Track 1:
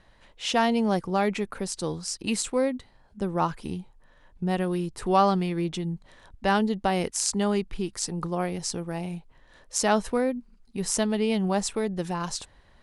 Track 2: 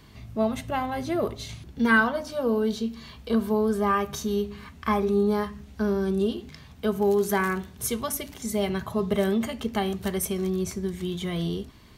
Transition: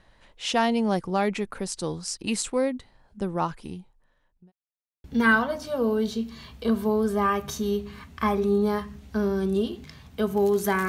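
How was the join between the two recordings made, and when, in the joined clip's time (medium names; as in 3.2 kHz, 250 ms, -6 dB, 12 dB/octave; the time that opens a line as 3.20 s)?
track 1
3.22–4.52 s: fade out linear
4.52–5.04 s: mute
5.04 s: go over to track 2 from 1.69 s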